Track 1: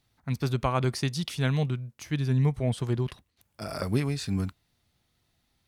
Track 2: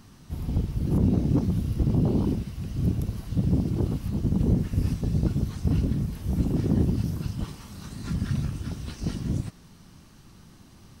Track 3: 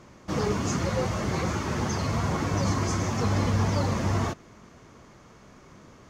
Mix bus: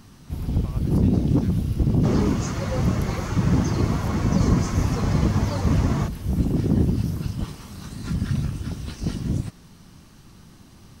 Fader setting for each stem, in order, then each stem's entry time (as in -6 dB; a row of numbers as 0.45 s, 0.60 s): -18.0 dB, +3.0 dB, -1.5 dB; 0.00 s, 0.00 s, 1.75 s